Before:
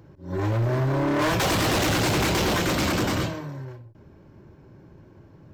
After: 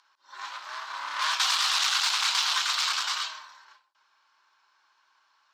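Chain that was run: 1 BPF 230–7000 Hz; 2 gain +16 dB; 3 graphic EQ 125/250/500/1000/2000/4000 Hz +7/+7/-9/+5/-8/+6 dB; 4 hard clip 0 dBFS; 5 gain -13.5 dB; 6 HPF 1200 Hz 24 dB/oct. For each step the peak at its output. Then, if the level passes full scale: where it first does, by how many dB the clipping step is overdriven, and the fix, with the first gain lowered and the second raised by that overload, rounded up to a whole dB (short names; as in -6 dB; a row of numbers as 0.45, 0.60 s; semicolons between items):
-14.0, +2.0, +4.5, 0.0, -13.5, -12.0 dBFS; step 2, 4.5 dB; step 2 +11 dB, step 5 -8.5 dB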